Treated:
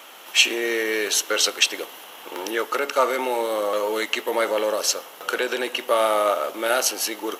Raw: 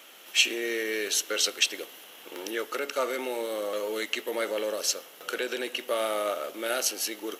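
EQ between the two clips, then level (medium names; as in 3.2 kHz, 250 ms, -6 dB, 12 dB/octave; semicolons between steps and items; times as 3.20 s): peaking EQ 950 Hz +9 dB 0.98 oct; +5.0 dB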